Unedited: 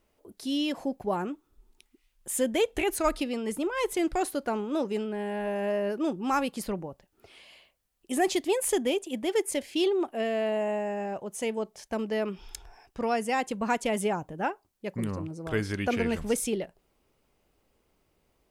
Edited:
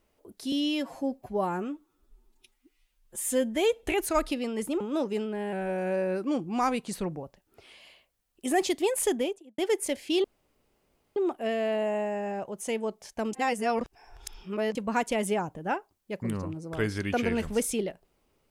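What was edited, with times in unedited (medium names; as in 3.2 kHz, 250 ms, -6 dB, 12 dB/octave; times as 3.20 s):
0.52–2.73 s: stretch 1.5×
3.70–4.60 s: delete
5.32–6.89 s: speed 92%
8.77–9.24 s: studio fade out
9.90 s: insert room tone 0.92 s
12.07–13.49 s: reverse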